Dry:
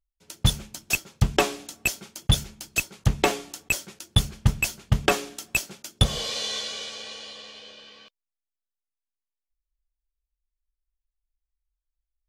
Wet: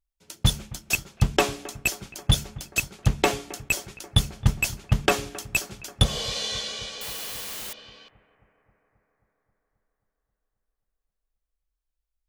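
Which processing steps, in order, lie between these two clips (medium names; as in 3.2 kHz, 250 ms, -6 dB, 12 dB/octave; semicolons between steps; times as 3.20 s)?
7.01–7.73 s: word length cut 6-bit, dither triangular; on a send: bucket-brigade echo 267 ms, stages 4096, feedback 70%, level -19 dB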